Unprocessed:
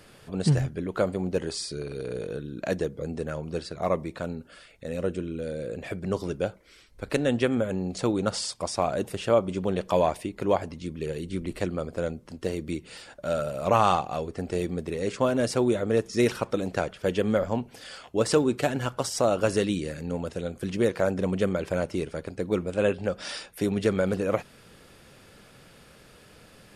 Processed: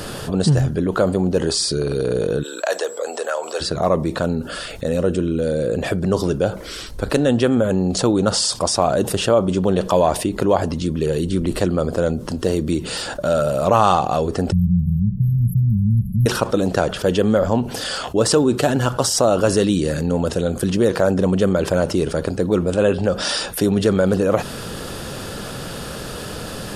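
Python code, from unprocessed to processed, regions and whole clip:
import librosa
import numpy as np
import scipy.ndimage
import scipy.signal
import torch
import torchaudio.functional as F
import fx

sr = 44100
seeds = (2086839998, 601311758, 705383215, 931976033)

y = fx.highpass(x, sr, hz=580.0, slope=24, at=(2.42, 3.6), fade=0.02)
y = fx.dmg_tone(y, sr, hz=7700.0, level_db=-63.0, at=(2.42, 3.6), fade=0.02)
y = fx.chain(y, sr, fx.low_shelf(hz=470.0, db=11.0),
    fx.clip_hard(threshold_db=-8.0),
    fx.brickwall_bandstop(low_hz=210.0, high_hz=11000.0), at=(14.52, 16.26))
y = fx.peak_eq(y, sr, hz=2200.0, db=-10.0, octaves=0.45)
y = fx.env_flatten(y, sr, amount_pct=50)
y = y * 10.0 ** (5.0 / 20.0)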